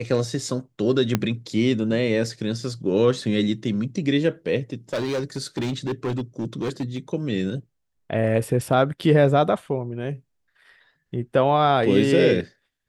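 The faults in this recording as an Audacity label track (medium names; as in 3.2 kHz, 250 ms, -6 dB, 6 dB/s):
1.150000	1.150000	pop -6 dBFS
4.930000	6.980000	clipped -21.5 dBFS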